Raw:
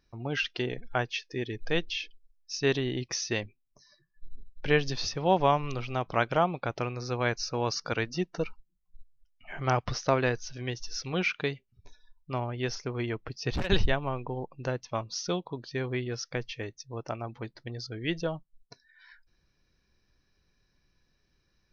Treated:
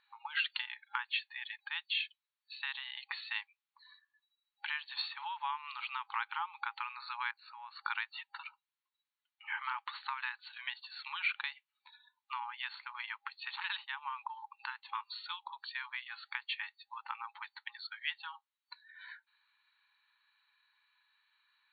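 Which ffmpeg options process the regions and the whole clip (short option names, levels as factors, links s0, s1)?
-filter_complex "[0:a]asettb=1/sr,asplit=3[s0][s1][s2];[s0]atrim=end=7.314[s3];[s1]atrim=start=7.31:end=7.84,asetpts=PTS-STARTPTS,afade=t=in:d=0.004:c=qsin,afade=t=out:st=0.526:d=0.004:c=qsin,lowpass=f=1500:p=1,acompressor=threshold=0.01:ratio=20:attack=3.2:release=140:knee=1:detection=peak[s4];[s2]atrim=start=7.836[s5];[s3][s4]acrossfade=d=0.004:c1=hsin:c2=qsin[s6];[s6][s5]acrossfade=d=0.004:c1=qsin:c2=hsin,acompressor=threshold=0.02:ratio=6,afftfilt=real='re*between(b*sr/4096,810,4500)':imag='im*between(b*sr/4096,810,4500)':win_size=4096:overlap=0.75,volume=1.78"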